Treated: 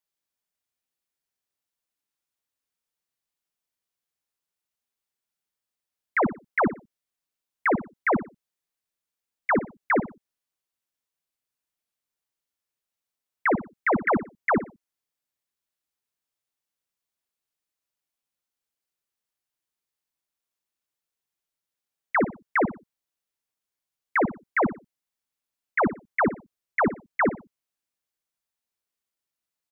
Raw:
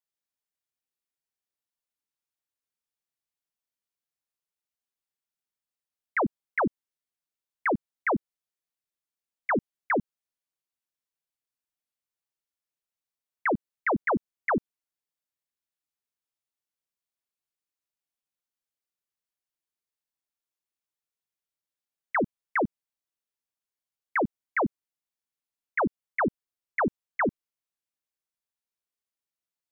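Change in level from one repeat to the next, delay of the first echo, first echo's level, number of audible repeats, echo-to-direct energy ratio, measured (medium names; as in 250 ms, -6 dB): -11.5 dB, 60 ms, -13.0 dB, 2, -12.5 dB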